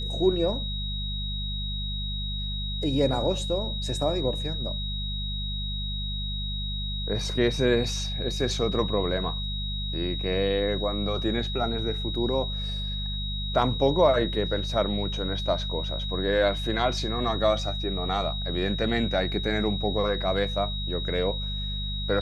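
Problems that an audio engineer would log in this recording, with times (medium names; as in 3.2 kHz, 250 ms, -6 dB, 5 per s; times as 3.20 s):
hum 50 Hz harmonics 4 -32 dBFS
whine 3.8 kHz -33 dBFS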